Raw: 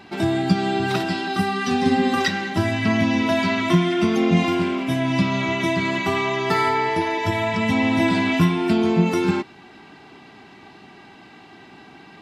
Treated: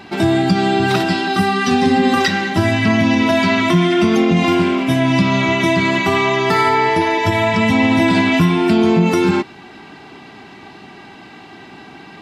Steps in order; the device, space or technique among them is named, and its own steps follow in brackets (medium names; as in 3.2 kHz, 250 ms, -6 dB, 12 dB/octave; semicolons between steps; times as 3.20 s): clipper into limiter (hard clipper -6 dBFS, distortion -49 dB; peak limiter -12 dBFS, peak gain reduction 6 dB); trim +7 dB